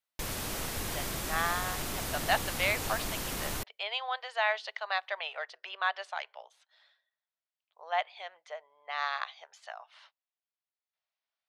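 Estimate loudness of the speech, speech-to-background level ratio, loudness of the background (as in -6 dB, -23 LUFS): -34.0 LUFS, 1.0 dB, -35.0 LUFS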